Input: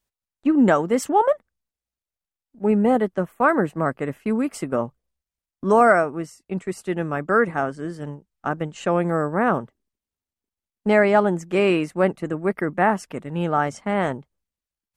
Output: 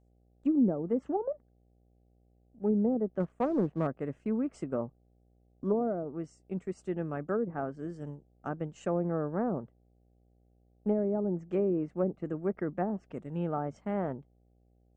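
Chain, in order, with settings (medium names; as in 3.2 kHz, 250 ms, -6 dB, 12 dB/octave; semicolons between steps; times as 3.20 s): low-pass that closes with the level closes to 440 Hz, closed at -13.5 dBFS; graphic EQ 1/2/4 kHz -5/-6/-10 dB; mains buzz 60 Hz, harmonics 13, -58 dBFS -6 dB/octave; 3.20–3.87 s: waveshaping leveller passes 1; steep low-pass 8.7 kHz; trim -8 dB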